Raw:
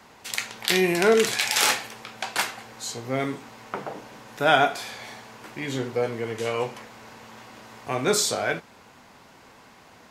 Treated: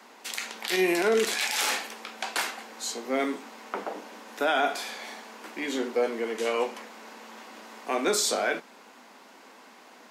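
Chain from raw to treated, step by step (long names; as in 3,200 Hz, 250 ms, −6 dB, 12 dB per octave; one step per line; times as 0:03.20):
Butterworth high-pass 210 Hz 48 dB per octave
brickwall limiter −15.5 dBFS, peak gain reduction 10.5 dB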